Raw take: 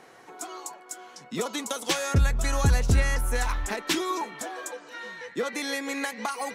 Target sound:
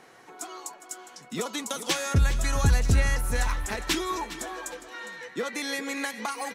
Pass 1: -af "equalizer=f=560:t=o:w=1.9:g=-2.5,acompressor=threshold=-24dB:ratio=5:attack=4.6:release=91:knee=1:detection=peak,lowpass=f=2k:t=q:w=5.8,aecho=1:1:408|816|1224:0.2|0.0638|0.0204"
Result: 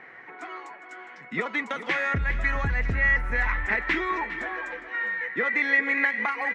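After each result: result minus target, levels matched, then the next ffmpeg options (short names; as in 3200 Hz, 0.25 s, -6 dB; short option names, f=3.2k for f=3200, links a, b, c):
compressor: peak gain reduction +9 dB; 2000 Hz band +7.5 dB
-af "lowpass=f=2k:t=q:w=5.8,equalizer=f=560:t=o:w=1.9:g=-2.5,aecho=1:1:408|816|1224:0.2|0.0638|0.0204"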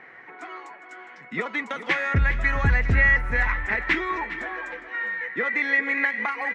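2000 Hz band +7.0 dB
-af "equalizer=f=560:t=o:w=1.9:g=-2.5,aecho=1:1:408|816|1224:0.2|0.0638|0.0204"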